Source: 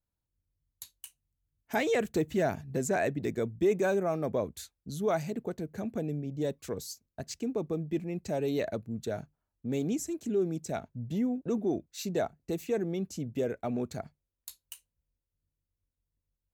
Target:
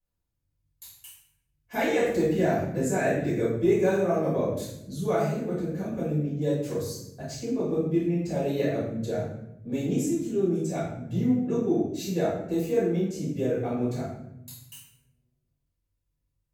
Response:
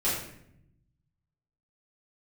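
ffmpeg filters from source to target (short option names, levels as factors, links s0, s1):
-filter_complex "[1:a]atrim=start_sample=2205,asetrate=39690,aresample=44100[s0];[0:a][s0]afir=irnorm=-1:irlink=0,volume=0.447"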